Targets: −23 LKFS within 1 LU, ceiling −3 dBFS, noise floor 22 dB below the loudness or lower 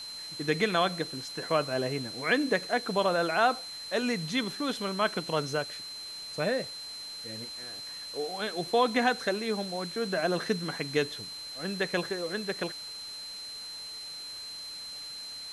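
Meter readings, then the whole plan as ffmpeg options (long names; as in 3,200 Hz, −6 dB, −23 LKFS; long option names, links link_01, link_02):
interfering tone 4,100 Hz; level of the tone −39 dBFS; background noise floor −42 dBFS; target noise floor −53 dBFS; integrated loudness −31.0 LKFS; sample peak −12.5 dBFS; target loudness −23.0 LKFS
→ -af "bandreject=frequency=4100:width=30"
-af "afftdn=noise_reduction=11:noise_floor=-42"
-af "volume=8dB"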